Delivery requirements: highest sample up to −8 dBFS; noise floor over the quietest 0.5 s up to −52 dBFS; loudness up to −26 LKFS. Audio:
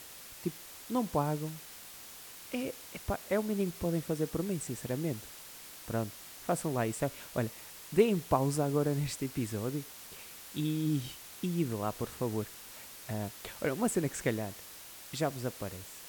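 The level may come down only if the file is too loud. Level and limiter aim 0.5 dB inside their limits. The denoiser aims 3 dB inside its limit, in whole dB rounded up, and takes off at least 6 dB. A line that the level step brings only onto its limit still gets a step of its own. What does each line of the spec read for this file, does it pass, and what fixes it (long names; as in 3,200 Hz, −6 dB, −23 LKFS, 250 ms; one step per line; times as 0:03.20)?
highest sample −13.0 dBFS: in spec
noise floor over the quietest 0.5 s −49 dBFS: out of spec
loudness −34.5 LKFS: in spec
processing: broadband denoise 6 dB, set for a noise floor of −49 dBFS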